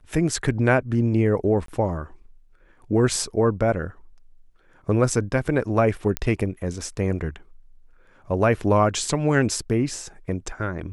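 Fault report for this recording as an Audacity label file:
1.660000	1.680000	gap 23 ms
6.170000	6.170000	pop -7 dBFS

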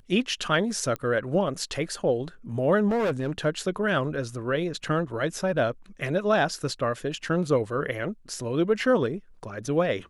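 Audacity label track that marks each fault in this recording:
0.960000	0.960000	pop -18 dBFS
2.880000	3.380000	clipped -22 dBFS

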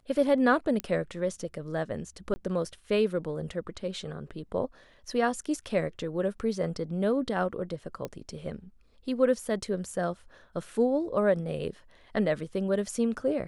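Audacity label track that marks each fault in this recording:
0.800000	0.800000	pop -16 dBFS
2.340000	2.360000	gap 20 ms
8.050000	8.050000	pop -21 dBFS

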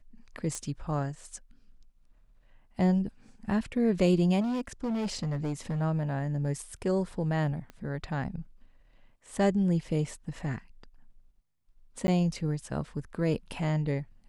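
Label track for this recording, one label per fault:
0.550000	0.550000	pop -22 dBFS
4.400000	5.820000	clipped -27.5 dBFS
7.700000	7.700000	pop -30 dBFS
12.070000	12.080000	gap 10 ms

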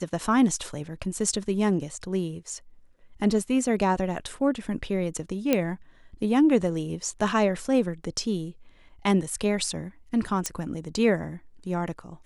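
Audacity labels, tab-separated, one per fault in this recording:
5.530000	5.530000	pop -8 dBFS
10.460000	10.460000	pop -11 dBFS

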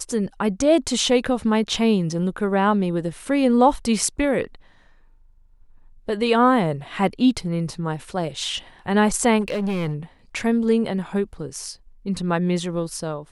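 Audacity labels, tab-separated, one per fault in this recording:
9.400000	9.940000	clipped -20.5 dBFS

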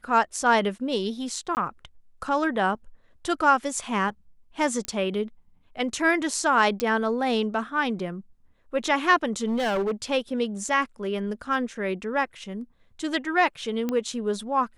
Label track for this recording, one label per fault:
1.550000	1.570000	gap 19 ms
4.850000	4.850000	pop -14 dBFS
6.800000	6.800000	pop -11 dBFS
9.450000	9.920000	clipped -22 dBFS
13.890000	13.890000	pop -15 dBFS

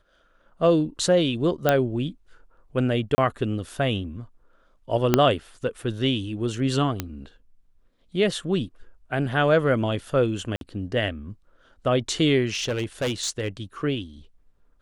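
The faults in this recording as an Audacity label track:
1.690000	1.690000	pop -6 dBFS
3.150000	3.180000	gap 30 ms
5.140000	5.140000	pop -3 dBFS
7.000000	7.000000	pop -11 dBFS
10.560000	10.610000	gap 52 ms
12.530000	13.480000	clipped -21.5 dBFS

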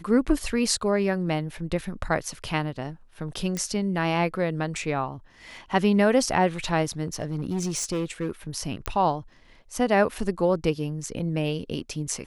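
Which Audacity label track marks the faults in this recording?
3.570000	3.570000	pop -16 dBFS
7.050000	8.310000	clipped -23 dBFS
8.860000	8.860000	pop -11 dBFS

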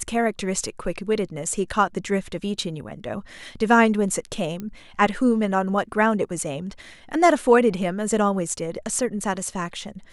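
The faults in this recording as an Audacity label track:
4.600000	4.600000	pop -19 dBFS

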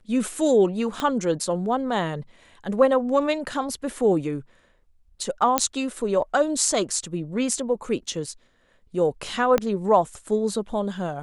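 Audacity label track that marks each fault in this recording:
1.000000	1.000000	pop -13 dBFS
5.580000	5.580000	pop -2 dBFS
9.580000	9.580000	pop -8 dBFS

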